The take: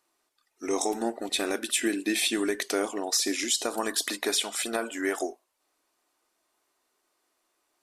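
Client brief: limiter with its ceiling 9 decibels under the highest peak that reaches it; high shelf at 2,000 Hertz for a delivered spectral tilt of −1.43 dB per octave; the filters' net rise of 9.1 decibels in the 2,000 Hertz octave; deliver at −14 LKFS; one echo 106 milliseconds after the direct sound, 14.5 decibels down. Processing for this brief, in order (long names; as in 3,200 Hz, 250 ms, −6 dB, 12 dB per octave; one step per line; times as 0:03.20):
high-shelf EQ 2,000 Hz +8.5 dB
parametric band 2,000 Hz +6 dB
brickwall limiter −13 dBFS
single-tap delay 106 ms −14.5 dB
level +10.5 dB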